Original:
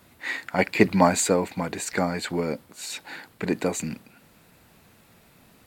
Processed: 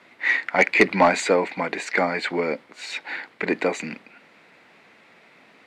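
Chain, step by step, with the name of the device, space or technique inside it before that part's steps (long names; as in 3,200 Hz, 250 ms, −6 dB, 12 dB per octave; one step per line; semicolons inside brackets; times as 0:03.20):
intercom (band-pass filter 310–3,900 Hz; parametric band 2,100 Hz +8 dB 0.48 octaves; soft clipping −10 dBFS, distortion −15 dB)
level +4.5 dB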